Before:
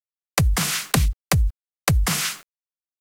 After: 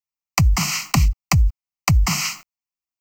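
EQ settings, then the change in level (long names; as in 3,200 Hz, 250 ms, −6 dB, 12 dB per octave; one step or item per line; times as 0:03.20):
phaser with its sweep stopped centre 2,400 Hz, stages 8
+4.0 dB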